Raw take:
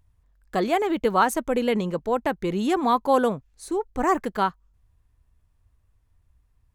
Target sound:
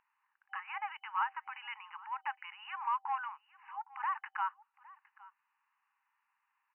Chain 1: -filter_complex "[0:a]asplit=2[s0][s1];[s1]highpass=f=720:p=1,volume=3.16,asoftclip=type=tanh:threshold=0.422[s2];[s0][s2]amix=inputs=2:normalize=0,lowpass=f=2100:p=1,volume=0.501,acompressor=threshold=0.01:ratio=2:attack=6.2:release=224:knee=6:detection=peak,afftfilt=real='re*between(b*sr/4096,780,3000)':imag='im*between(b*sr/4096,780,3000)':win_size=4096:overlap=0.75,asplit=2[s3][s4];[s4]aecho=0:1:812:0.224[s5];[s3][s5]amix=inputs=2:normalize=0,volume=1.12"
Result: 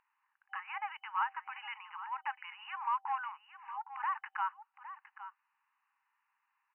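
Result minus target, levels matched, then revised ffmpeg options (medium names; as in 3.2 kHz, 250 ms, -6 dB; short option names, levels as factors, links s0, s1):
echo-to-direct +8.5 dB
-filter_complex "[0:a]asplit=2[s0][s1];[s1]highpass=f=720:p=1,volume=3.16,asoftclip=type=tanh:threshold=0.422[s2];[s0][s2]amix=inputs=2:normalize=0,lowpass=f=2100:p=1,volume=0.501,acompressor=threshold=0.01:ratio=2:attack=6.2:release=224:knee=6:detection=peak,afftfilt=real='re*between(b*sr/4096,780,3000)':imag='im*between(b*sr/4096,780,3000)':win_size=4096:overlap=0.75,asplit=2[s3][s4];[s4]aecho=0:1:812:0.0841[s5];[s3][s5]amix=inputs=2:normalize=0,volume=1.12"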